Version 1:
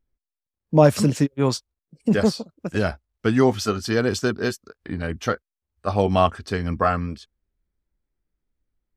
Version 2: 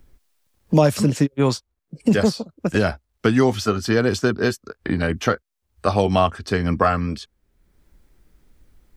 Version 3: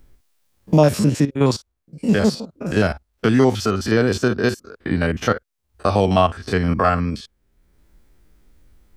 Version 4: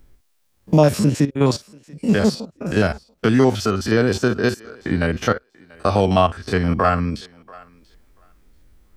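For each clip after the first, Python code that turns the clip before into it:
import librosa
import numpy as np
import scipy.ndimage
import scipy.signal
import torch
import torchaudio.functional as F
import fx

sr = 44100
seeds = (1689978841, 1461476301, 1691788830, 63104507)

y1 = fx.band_squash(x, sr, depth_pct=70)
y1 = y1 * 10.0 ** (2.0 / 20.0)
y2 = fx.spec_steps(y1, sr, hold_ms=50)
y2 = y2 * 10.0 ** (2.5 / 20.0)
y3 = fx.echo_thinned(y2, sr, ms=687, feedback_pct=15, hz=440.0, wet_db=-22.0)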